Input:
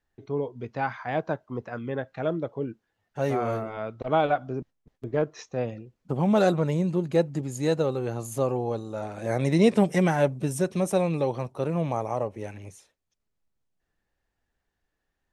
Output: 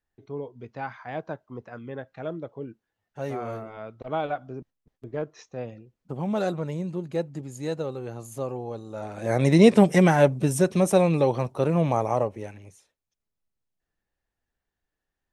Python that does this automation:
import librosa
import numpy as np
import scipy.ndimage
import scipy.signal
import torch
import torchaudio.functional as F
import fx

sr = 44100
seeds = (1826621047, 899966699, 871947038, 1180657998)

y = fx.gain(x, sr, db=fx.line((8.73, -5.5), (9.46, 4.5), (12.19, 4.5), (12.64, -5.0)))